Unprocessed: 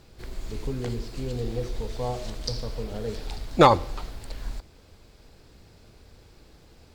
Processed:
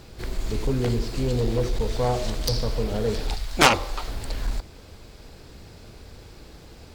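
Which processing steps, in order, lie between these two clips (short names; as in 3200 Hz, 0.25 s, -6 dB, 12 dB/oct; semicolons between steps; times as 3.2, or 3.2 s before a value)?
3.34–4.07 bell 290 Hz -> 100 Hz -13 dB 2.9 oct; added harmonics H 7 -8 dB, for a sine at -5 dBFS; gain +3 dB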